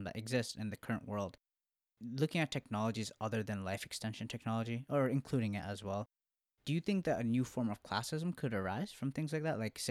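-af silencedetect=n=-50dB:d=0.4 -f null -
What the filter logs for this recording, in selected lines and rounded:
silence_start: 1.34
silence_end: 2.01 | silence_duration: 0.67
silence_start: 6.04
silence_end: 6.67 | silence_duration: 0.63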